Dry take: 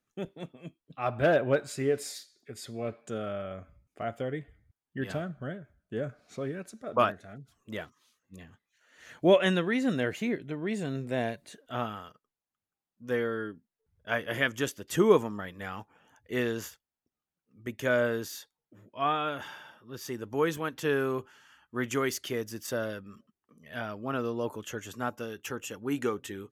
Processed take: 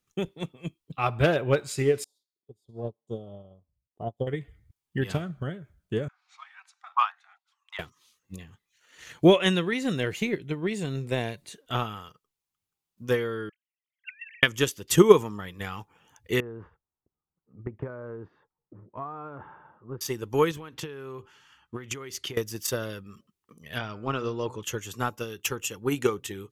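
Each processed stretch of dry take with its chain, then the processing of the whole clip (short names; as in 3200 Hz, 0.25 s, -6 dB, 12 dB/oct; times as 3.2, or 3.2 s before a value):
2.04–4.27 elliptic band-stop 960–3500 Hz, stop band 50 dB + resonant high shelf 3200 Hz -11.5 dB, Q 1.5 + upward expander 2.5:1, over -48 dBFS
6.08–7.79 steep high-pass 780 Hz 96 dB/oct + tape spacing loss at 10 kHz 22 dB
13.49–14.43 sine-wave speech + elliptic high-pass 2000 Hz, stop band 70 dB + negative-ratio compressor -53 dBFS
16.4–20.01 LPF 1300 Hz 24 dB/oct + compressor 5:1, threshold -36 dBFS
20.51–22.37 LPF 3900 Hz 6 dB/oct + compressor 12:1, threshold -37 dBFS
23.78–24.63 LPF 7400 Hz 24 dB/oct + de-hum 123.1 Hz, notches 21
whole clip: fifteen-band EQ 250 Hz -8 dB, 630 Hz -10 dB, 1600 Hz -7 dB; transient shaper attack +8 dB, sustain 0 dB; gain +5.5 dB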